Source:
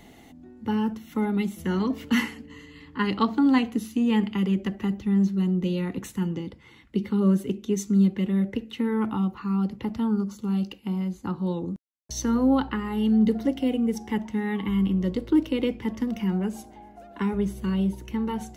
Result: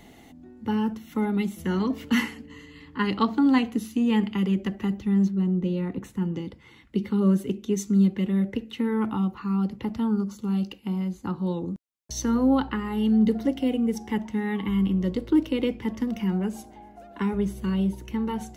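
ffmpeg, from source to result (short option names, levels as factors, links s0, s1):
-filter_complex "[0:a]asettb=1/sr,asplit=3[s0][s1][s2];[s0]atrim=end=5.284[s3];[s1]atrim=start=5.28:end=6.34,asetpts=PTS-STARTPTS,afade=t=in:d=0.004:c=qsin,afade=t=out:st=1.056:d=0.004:c=qsin,highshelf=f=2100:g=-10.5[s4];[s2]atrim=start=6.336[s5];[s3][s4]acrossfade=d=0.004:c1=hsin:c2=qsin[s6];[s6][s5]acrossfade=d=0.004:c1=qsin:c2=hsin"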